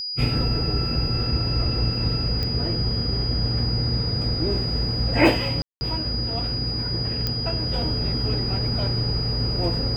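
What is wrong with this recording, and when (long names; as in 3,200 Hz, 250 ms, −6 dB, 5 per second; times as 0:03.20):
whistle 4,900 Hz −27 dBFS
0:02.43: click −15 dBFS
0:05.62–0:05.81: drop-out 190 ms
0:07.27: click −11 dBFS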